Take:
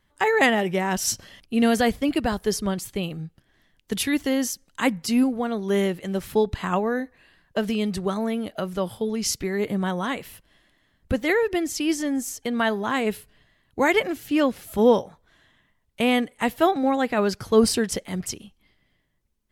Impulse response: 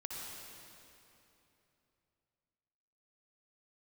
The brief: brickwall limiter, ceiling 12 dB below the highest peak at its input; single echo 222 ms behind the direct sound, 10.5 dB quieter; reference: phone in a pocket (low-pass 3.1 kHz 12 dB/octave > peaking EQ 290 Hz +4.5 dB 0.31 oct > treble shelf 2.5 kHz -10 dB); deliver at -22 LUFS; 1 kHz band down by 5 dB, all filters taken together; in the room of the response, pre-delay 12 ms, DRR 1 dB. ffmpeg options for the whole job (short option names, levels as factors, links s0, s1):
-filter_complex "[0:a]equalizer=f=1000:t=o:g=-5.5,alimiter=limit=0.126:level=0:latency=1,aecho=1:1:222:0.299,asplit=2[s0][s1];[1:a]atrim=start_sample=2205,adelay=12[s2];[s1][s2]afir=irnorm=-1:irlink=0,volume=0.891[s3];[s0][s3]amix=inputs=2:normalize=0,lowpass=3100,equalizer=f=290:t=o:w=0.31:g=4.5,highshelf=f=2500:g=-10,volume=1.58"